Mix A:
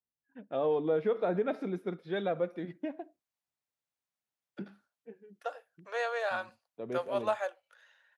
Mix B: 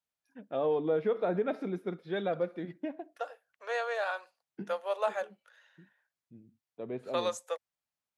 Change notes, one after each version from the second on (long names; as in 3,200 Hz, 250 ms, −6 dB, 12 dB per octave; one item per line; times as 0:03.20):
second voice: entry −2.25 s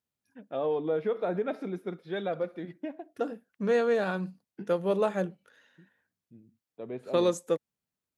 second voice: remove Butterworth high-pass 580 Hz 36 dB per octave
master: add high-shelf EQ 8,400 Hz +6 dB